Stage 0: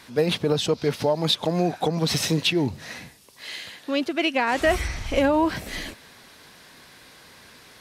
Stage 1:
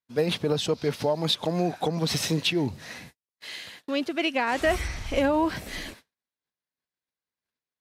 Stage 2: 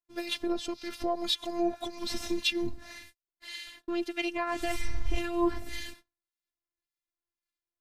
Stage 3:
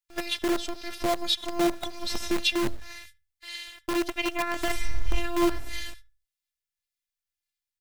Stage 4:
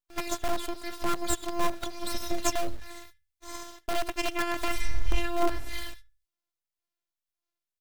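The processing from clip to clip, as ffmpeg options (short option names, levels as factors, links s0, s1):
-af "agate=range=0.00562:threshold=0.00708:ratio=16:detection=peak,volume=0.708"
-filter_complex "[0:a]acrossover=split=1500[s0][s1];[s0]aeval=exprs='val(0)*(1-0.7/2+0.7/2*cos(2*PI*1.8*n/s))':c=same[s2];[s1]aeval=exprs='val(0)*(1-0.7/2-0.7/2*cos(2*PI*1.8*n/s))':c=same[s3];[s2][s3]amix=inputs=2:normalize=0,afftfilt=real='hypot(re,im)*cos(PI*b)':imag='0':win_size=512:overlap=0.75,asubboost=boost=4:cutoff=240,volume=1.19"
-filter_complex "[0:a]asplit=2[s0][s1];[s1]adelay=76,lowpass=f=930:p=1,volume=0.224,asplit=2[s2][s3];[s3]adelay=76,lowpass=f=930:p=1,volume=0.36,asplit=2[s4][s5];[s5]adelay=76,lowpass=f=930:p=1,volume=0.36,asplit=2[s6][s7];[s7]adelay=76,lowpass=f=930:p=1,volume=0.36[s8];[s0][s2][s4][s6][s8]amix=inputs=5:normalize=0,acrossover=split=110|1500[s9][s10][s11];[s10]acrusher=bits=6:dc=4:mix=0:aa=0.000001[s12];[s9][s12][s11]amix=inputs=3:normalize=0,volume=1.5"
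-af "aeval=exprs='abs(val(0))':c=same"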